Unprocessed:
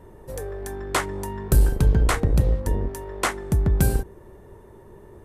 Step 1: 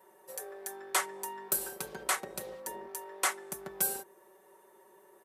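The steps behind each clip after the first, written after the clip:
high-pass filter 600 Hz 12 dB per octave
high-shelf EQ 7,400 Hz +11 dB
comb filter 5.3 ms, depth 72%
level −8.5 dB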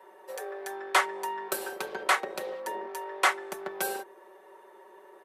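three-way crossover with the lows and the highs turned down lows −20 dB, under 280 Hz, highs −15 dB, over 4,300 Hz
level +8.5 dB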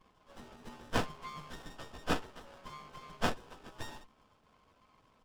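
partials spread apart or drawn together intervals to 109%
four-pole ladder band-pass 2,500 Hz, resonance 30%
windowed peak hold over 17 samples
level +12 dB

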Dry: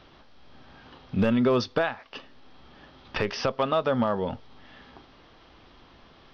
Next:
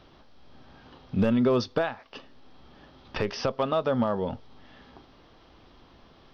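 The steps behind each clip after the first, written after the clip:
parametric band 2,100 Hz −4.5 dB 2.1 octaves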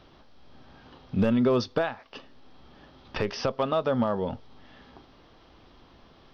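no processing that can be heard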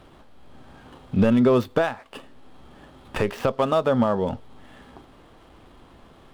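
running median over 9 samples
level +5 dB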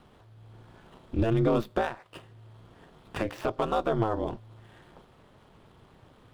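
ring modulation 110 Hz
level −3.5 dB

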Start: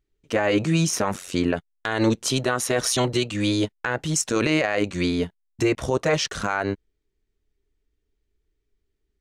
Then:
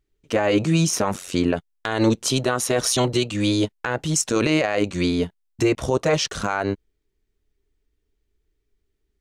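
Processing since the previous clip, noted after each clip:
dynamic equaliser 1,800 Hz, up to −4 dB, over −40 dBFS, Q 1.8
level +2 dB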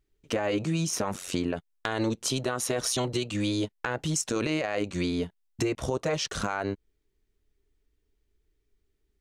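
downward compressor 3 to 1, threshold −26 dBFS, peak gain reduction 9.5 dB
level −1 dB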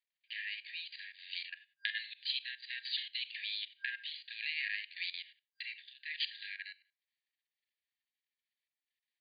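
four-comb reverb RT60 0.31 s, combs from 29 ms, DRR 6 dB
output level in coarse steps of 15 dB
brick-wall band-pass 1,600–4,800 Hz
level +1 dB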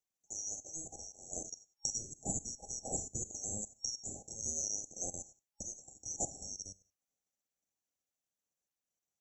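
neighbouring bands swapped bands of 4,000 Hz

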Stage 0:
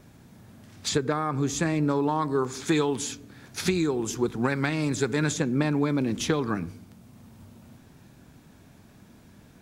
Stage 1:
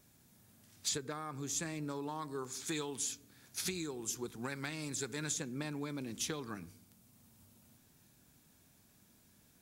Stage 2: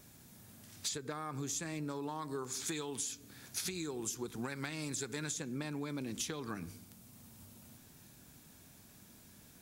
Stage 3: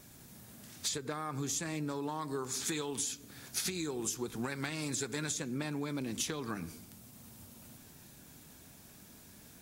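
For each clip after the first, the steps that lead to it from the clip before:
first-order pre-emphasis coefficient 0.8; level −2.5 dB
downward compressor 6 to 1, threshold −44 dBFS, peak gain reduction 12 dB; level +7.5 dB
mains-hum notches 50/100 Hz; level +3 dB; AAC 64 kbit/s 44,100 Hz

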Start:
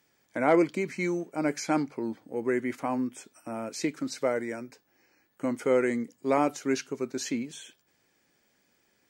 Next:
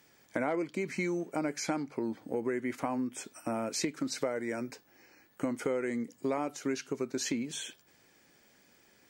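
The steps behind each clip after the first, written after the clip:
downward compressor 6 to 1, threshold −36 dBFS, peak gain reduction 18 dB
level +6 dB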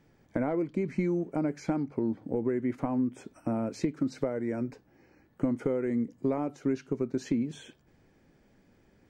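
spectral tilt −4 dB per octave
level −2.5 dB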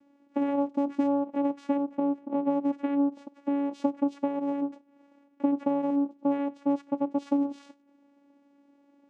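channel vocoder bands 4, saw 282 Hz
level +3 dB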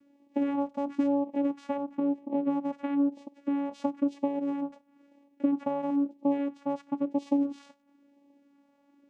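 auto-filter notch sine 1 Hz 320–1,500 Hz

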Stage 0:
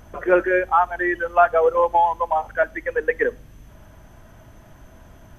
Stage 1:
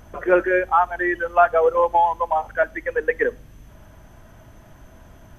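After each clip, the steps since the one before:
no processing that can be heard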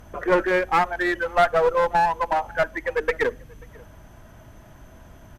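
asymmetric clip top −21 dBFS
slap from a distant wall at 92 metres, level −25 dB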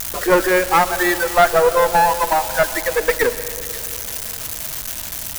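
spike at every zero crossing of −19 dBFS
on a send at −13 dB: convolution reverb RT60 3.0 s, pre-delay 117 ms
on the sum: level +5 dB

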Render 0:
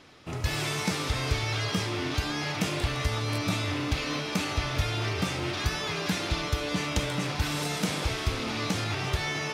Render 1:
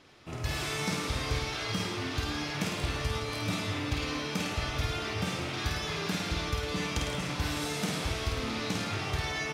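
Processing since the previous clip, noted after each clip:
reverse bouncing-ball delay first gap 50 ms, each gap 1.1×, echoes 5
level −5 dB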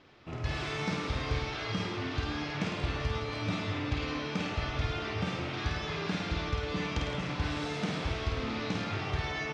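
high-frequency loss of the air 150 metres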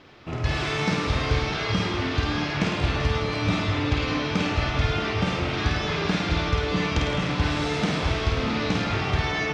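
echo with a time of its own for lows and highs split 1,200 Hz, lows 628 ms, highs 210 ms, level −12.5 dB
level +8.5 dB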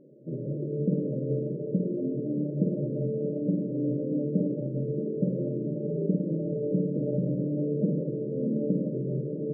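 brick-wall band-pass 120–620 Hz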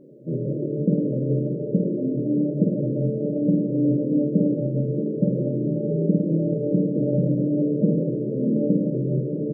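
double-tracking delay 24 ms −7.5 dB
level +6 dB

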